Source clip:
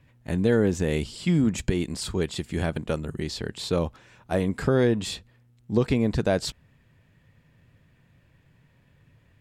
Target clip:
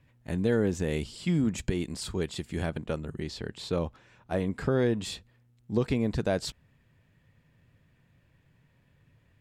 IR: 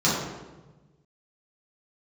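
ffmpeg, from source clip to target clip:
-filter_complex "[0:a]asettb=1/sr,asplit=3[s0][s1][s2];[s0]atrim=end=2.694[s3];[s1]atrim=start=2.69:end=4.86,asetpts=PTS-STARTPTS,afade=t=in:d=0.004:c=qsin,afade=t=out:st=2.166:d=0.004:c=qsin,highshelf=f=6300:g=-7[s4];[s2]atrim=start=4.856[s5];[s3][s4]acrossfade=d=0.004:c1=hsin:c2=qsin[s6];[s6][s5]acrossfade=d=0.004:c1=qsin:c2=hsin,volume=0.596"

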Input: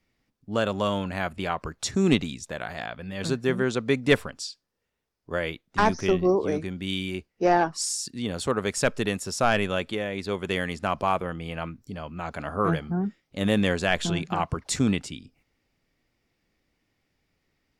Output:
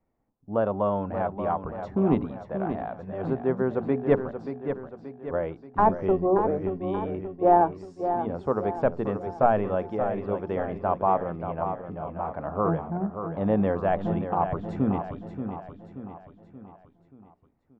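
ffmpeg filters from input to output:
-af "lowpass=f=850:t=q:w=1.8,bandreject=f=60:t=h:w=6,bandreject=f=120:t=h:w=6,bandreject=f=180:t=h:w=6,bandreject=f=240:t=h:w=6,bandreject=f=300:t=h:w=6,bandreject=f=360:t=h:w=6,bandreject=f=420:t=h:w=6,aecho=1:1:580|1160|1740|2320|2900:0.376|0.18|0.0866|0.0416|0.02,volume=0.841"

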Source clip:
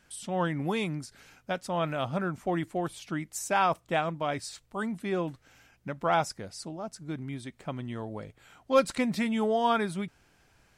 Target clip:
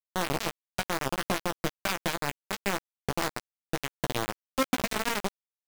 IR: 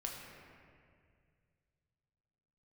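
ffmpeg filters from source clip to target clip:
-filter_complex "[0:a]agate=range=0.141:threshold=0.00316:ratio=16:detection=peak,bass=f=250:g=14,treble=f=4000:g=-6,acompressor=threshold=0.0562:ratio=10,atempo=1.9,acrusher=bits=3:mix=0:aa=0.000001,asplit=2[s0][s1];[s1]adelay=15,volume=0.398[s2];[s0][s2]amix=inputs=2:normalize=0"

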